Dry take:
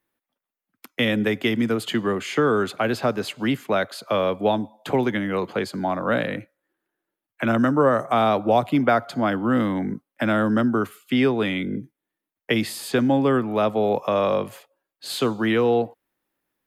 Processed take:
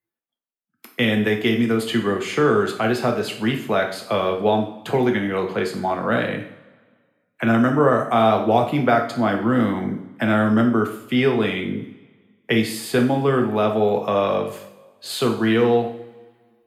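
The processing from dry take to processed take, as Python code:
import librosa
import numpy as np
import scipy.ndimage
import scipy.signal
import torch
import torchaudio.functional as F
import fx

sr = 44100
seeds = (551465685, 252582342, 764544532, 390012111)

y = fx.rev_double_slope(x, sr, seeds[0], early_s=0.53, late_s=1.7, knee_db=-18, drr_db=2.0)
y = fx.noise_reduce_blind(y, sr, reduce_db=13)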